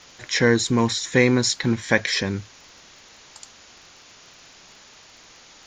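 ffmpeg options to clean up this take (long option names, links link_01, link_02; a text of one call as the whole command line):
ffmpeg -i in.wav -af "adeclick=threshold=4,afwtdn=0.0063" out.wav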